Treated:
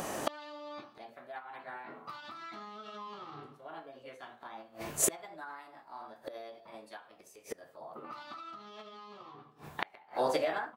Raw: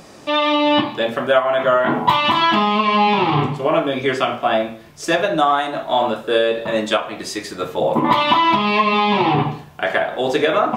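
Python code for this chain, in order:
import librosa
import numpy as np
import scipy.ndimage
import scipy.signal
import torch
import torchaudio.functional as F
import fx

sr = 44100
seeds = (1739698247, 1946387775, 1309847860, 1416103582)

y = fx.fade_out_tail(x, sr, length_s=2.73)
y = fx.peak_eq(y, sr, hz=3600.0, db=-7.5, octaves=1.8)
y = fx.gate_flip(y, sr, shuts_db=-21.0, range_db=-34)
y = fx.formant_shift(y, sr, semitones=4)
y = fx.bass_treble(y, sr, bass_db=-6, treble_db=3)
y = y * 10.0 ** (5.5 / 20.0)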